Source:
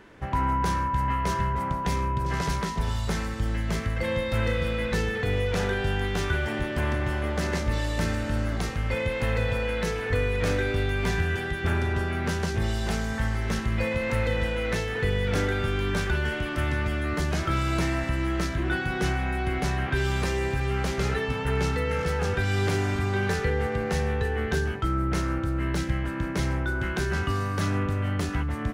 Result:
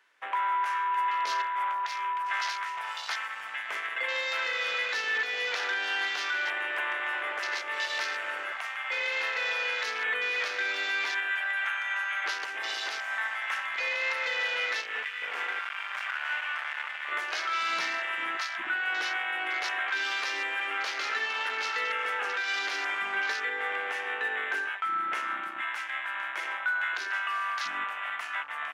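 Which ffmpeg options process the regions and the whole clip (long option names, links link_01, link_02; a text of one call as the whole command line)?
ffmpeg -i in.wav -filter_complex "[0:a]asettb=1/sr,asplit=3[link_01][link_02][link_03];[link_01]atrim=end=0.974[link_04];[link_02]atrim=start=0.97:end=1.42,asetpts=PTS-STARTPTS,afade=type=in:duration=0.004:curve=qsin,afade=type=out:start_time=0.446:duration=0.004:curve=qsin,highpass=43,equalizer=frequency=1700:width=1:gain=-4,acontrast=32[link_05];[link_03]atrim=start=1.416[link_06];[link_04][link_05]acrossfade=duration=0.004:curve1=hsin:curve2=qsin[link_07];[link_07][link_06]acrossfade=duration=0.004:curve1=qsin:curve2=hsin,asettb=1/sr,asplit=3[link_08][link_09][link_10];[link_08]atrim=end=11.654[link_11];[link_09]atrim=start=11.65:end=12.24,asetpts=PTS-STARTPTS,afade=type=in:duration=0.004:curve=qsin,afade=type=out:start_time=0.586:duration=0.004:curve=qsin,highpass=990,aeval=exprs='val(0)+0.00282*sin(2*PI*6400*n/s)':channel_layout=same[link_12];[link_10]atrim=start=12.236[link_13];[link_11][link_12]acrossfade=duration=0.004:curve1=hsin:curve2=qsin[link_14];[link_14][link_13]acrossfade=duration=0.004:curve1=qsin:curve2=hsin,asettb=1/sr,asplit=3[link_15][link_16][link_17];[link_15]atrim=end=14.814[link_18];[link_16]atrim=start=14.81:end=17.12,asetpts=PTS-STARTPTS,afade=type=in:duration=0.004:curve=qsin,afade=type=out:start_time=2.306:duration=0.004:curve=qsin,lowpass=6800,bandreject=frequency=97.86:width_type=h:width=4,bandreject=frequency=195.72:width_type=h:width=4,bandreject=frequency=293.58:width_type=h:width=4,bandreject=frequency=391.44:width_type=h:width=4,bandreject=frequency=489.3:width_type=h:width=4,bandreject=frequency=587.16:width_type=h:width=4,bandreject=frequency=685.02:width_type=h:width=4,bandreject=frequency=782.88:width_type=h:width=4,bandreject=frequency=880.74:width_type=h:width=4,bandreject=frequency=978.6:width_type=h:width=4,bandreject=frequency=1076.46:width_type=h:width=4,bandreject=frequency=1174.32:width_type=h:width=4,bandreject=frequency=1272.18:width_type=h:width=4,bandreject=frequency=1370.04:width_type=h:width=4,bandreject=frequency=1467.9:width_type=h:width=4,bandreject=frequency=1565.76:width_type=h:width=4,bandreject=frequency=1663.62:width_type=h:width=4,bandreject=frequency=1761.48:width_type=h:width=4,bandreject=frequency=1859.34:width_type=h:width=4,bandreject=frequency=1957.2:width_type=h:width=4,bandreject=frequency=2055.06:width_type=h:width=4,bandreject=frequency=2152.92:width_type=h:width=4,bandreject=frequency=2250.78:width_type=h:width=4,bandreject=frequency=2348.64:width_type=h:width=4,bandreject=frequency=2446.5:width_type=h:width=4,bandreject=frequency=2544.36:width_type=h:width=4,bandreject=frequency=2642.22:width_type=h:width=4,bandreject=frequency=2740.08:width_type=h:width=4,asoftclip=type=hard:threshold=-30dB[link_19];[link_17]atrim=start=17.116[link_20];[link_18][link_19]acrossfade=duration=0.004:curve1=hsin:curve2=qsin[link_21];[link_21][link_20]acrossfade=duration=0.004:curve1=qsin:curve2=hsin,highpass=1300,afwtdn=0.00891,alimiter=level_in=4dB:limit=-24dB:level=0:latency=1:release=225,volume=-4dB,volume=7.5dB" out.wav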